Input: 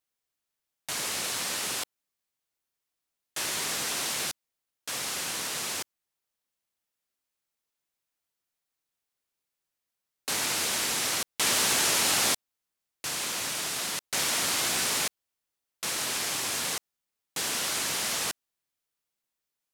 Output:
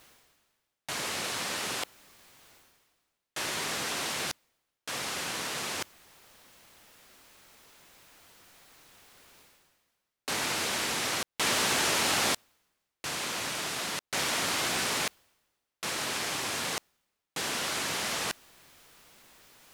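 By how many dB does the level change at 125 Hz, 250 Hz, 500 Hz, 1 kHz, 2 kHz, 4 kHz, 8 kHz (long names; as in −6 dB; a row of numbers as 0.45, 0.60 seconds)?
+1.5, +1.5, +1.5, +1.0, +0.5, −2.0, −5.0 decibels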